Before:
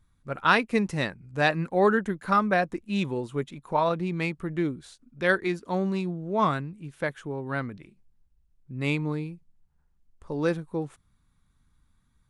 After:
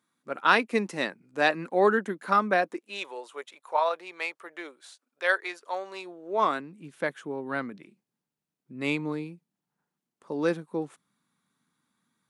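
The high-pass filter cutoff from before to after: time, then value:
high-pass filter 24 dB per octave
0:02.56 230 Hz
0:03.09 540 Hz
0:05.86 540 Hz
0:06.85 190 Hz

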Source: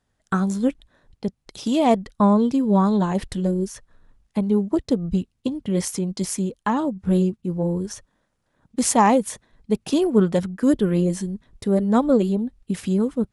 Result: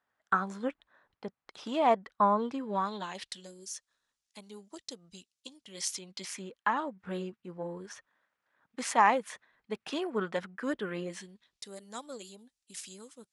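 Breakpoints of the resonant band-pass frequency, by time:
resonant band-pass, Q 1.2
0:02.49 1,300 Hz
0:03.51 6,100 Hz
0:05.68 6,100 Hz
0:06.47 1,700 Hz
0:11.02 1,700 Hz
0:11.77 6,900 Hz

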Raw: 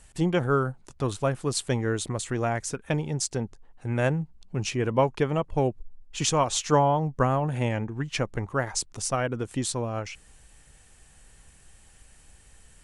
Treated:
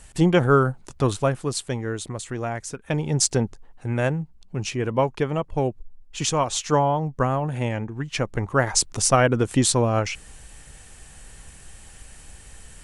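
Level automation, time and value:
0:01.06 +6.5 dB
0:01.72 −1.5 dB
0:02.79 −1.5 dB
0:03.24 +9 dB
0:04.11 +1 dB
0:08.06 +1 dB
0:08.85 +9.5 dB

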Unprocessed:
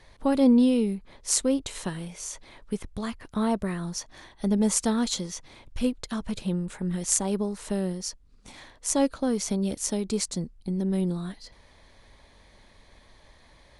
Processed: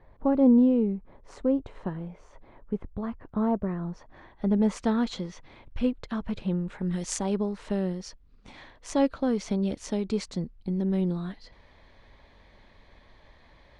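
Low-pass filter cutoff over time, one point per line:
0:03.82 1,100 Hz
0:04.79 2,600 Hz
0:06.70 2,600 Hz
0:06.97 5,800 Hz
0:07.39 3,400 Hz

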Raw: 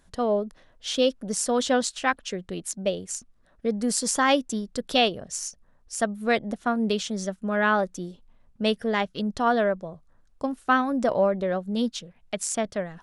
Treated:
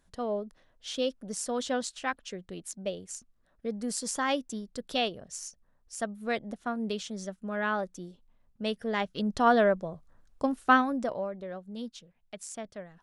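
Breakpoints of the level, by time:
0:08.69 −8 dB
0:09.45 0 dB
0:10.74 0 dB
0:11.25 −13 dB

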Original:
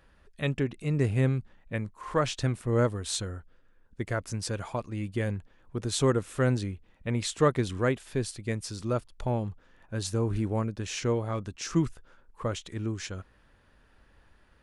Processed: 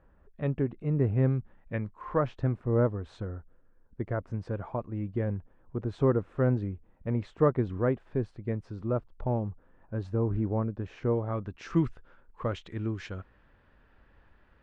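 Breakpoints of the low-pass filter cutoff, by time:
0:01.11 1,100 Hz
0:01.90 2,200 Hz
0:02.27 1,100 Hz
0:11.10 1,100 Hz
0:11.79 2,600 Hz

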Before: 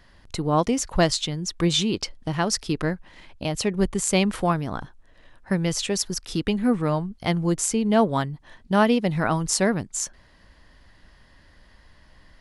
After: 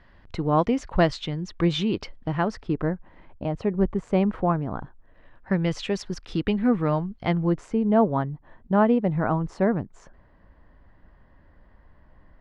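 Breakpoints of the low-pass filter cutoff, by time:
0:02.16 2,500 Hz
0:02.83 1,200 Hz
0:04.73 1,200 Hz
0:05.65 2,800 Hz
0:07.17 2,800 Hz
0:07.81 1,200 Hz

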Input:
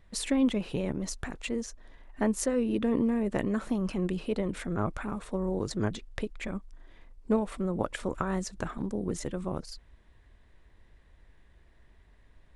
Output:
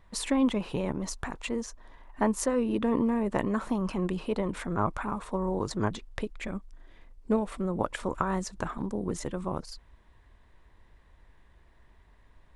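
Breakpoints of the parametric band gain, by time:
parametric band 990 Hz 0.7 octaves
0:05.85 +9.5 dB
0:06.48 +0.5 dB
0:07.34 +0.5 dB
0:07.96 +6.5 dB

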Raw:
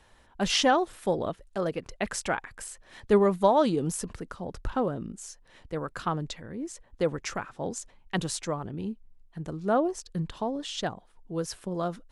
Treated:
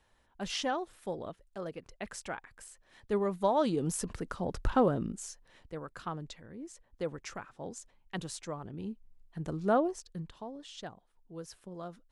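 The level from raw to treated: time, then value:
0:03.07 −10.5 dB
0:04.40 +2 dB
0:05.06 +2 dB
0:05.81 −9 dB
0:08.41 −9 dB
0:09.61 0 dB
0:10.39 −12.5 dB

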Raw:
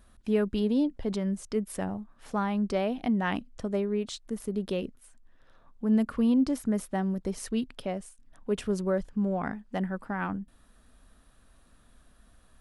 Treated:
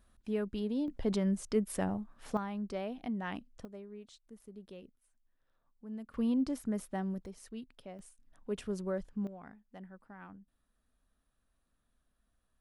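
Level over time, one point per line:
−8.5 dB
from 0:00.88 −1 dB
from 0:02.37 −10 dB
from 0:03.65 −19 dB
from 0:06.14 −7 dB
from 0:07.26 −15 dB
from 0:07.99 −8 dB
from 0:09.27 −19 dB

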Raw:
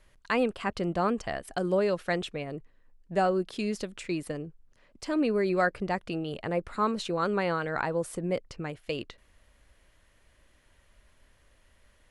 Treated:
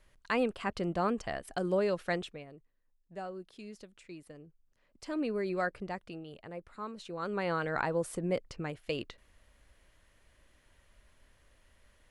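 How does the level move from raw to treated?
0:02.14 −3.5 dB
0:02.57 −16 dB
0:04.31 −16 dB
0:05.11 −7 dB
0:05.73 −7 dB
0:06.43 −14 dB
0:06.96 −14 dB
0:07.59 −2 dB

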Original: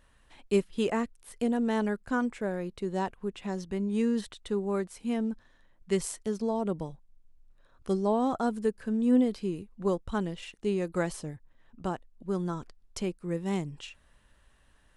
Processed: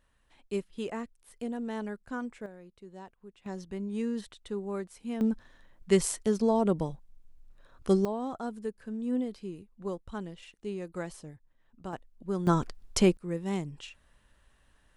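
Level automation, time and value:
−7.5 dB
from 0:02.46 −16 dB
from 0:03.46 −5 dB
from 0:05.21 +4.5 dB
from 0:08.05 −7.5 dB
from 0:11.93 −1 dB
from 0:12.47 +10 dB
from 0:13.17 −1.5 dB

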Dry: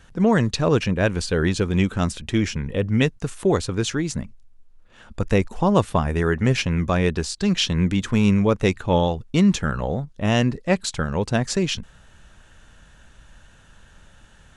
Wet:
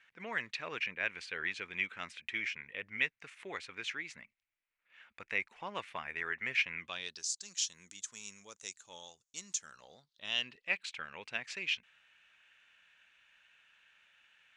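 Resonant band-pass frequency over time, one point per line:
resonant band-pass, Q 4.3
0:06.77 2,200 Hz
0:07.30 6,800 Hz
0:09.55 6,800 Hz
0:10.72 2,400 Hz

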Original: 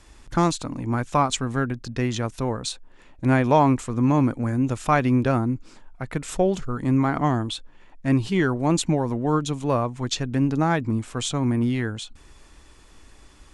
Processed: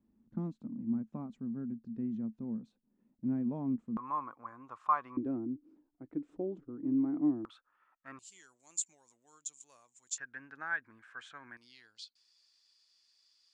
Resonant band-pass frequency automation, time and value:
resonant band-pass, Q 10
220 Hz
from 0:03.97 1,100 Hz
from 0:05.17 300 Hz
from 0:07.45 1,300 Hz
from 0:08.19 7,200 Hz
from 0:10.18 1,600 Hz
from 0:11.57 4,700 Hz

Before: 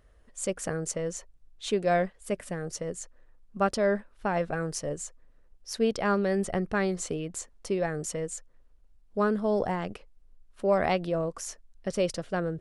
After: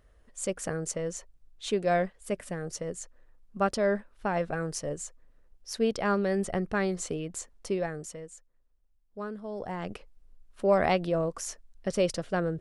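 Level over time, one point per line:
0:07.75 −1 dB
0:08.30 −11.5 dB
0:09.54 −11.5 dB
0:09.94 +1 dB

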